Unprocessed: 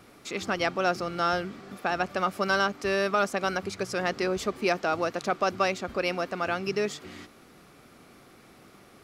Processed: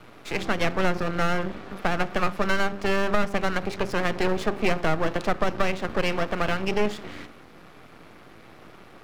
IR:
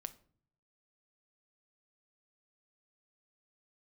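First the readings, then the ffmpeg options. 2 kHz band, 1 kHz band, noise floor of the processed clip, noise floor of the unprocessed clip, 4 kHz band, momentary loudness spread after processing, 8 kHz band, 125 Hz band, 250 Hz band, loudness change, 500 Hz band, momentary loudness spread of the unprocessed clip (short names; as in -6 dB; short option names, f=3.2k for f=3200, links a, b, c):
+2.0 dB, +0.5 dB, -49 dBFS, -54 dBFS, +1.0 dB, 6 LU, -1.0 dB, +7.5 dB, +4.5 dB, +2.0 dB, +1.5 dB, 7 LU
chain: -filter_complex "[0:a]bandreject=f=50:t=h:w=6,bandreject=f=100:t=h:w=6,bandreject=f=150:t=h:w=6,bandreject=f=200:t=h:w=6,bandreject=f=250:t=h:w=6,bandreject=f=300:t=h:w=6,bandreject=f=350:t=h:w=6,bandreject=f=400:t=h:w=6,asplit=2[a][b];[1:a]atrim=start_sample=2205,lowpass=3.7k[c];[b][c]afir=irnorm=-1:irlink=0,volume=10.5dB[d];[a][d]amix=inputs=2:normalize=0,aeval=exprs='max(val(0),0)':c=same,acrossover=split=310[e][f];[f]acompressor=threshold=-22dB:ratio=6[g];[e][g]amix=inputs=2:normalize=0"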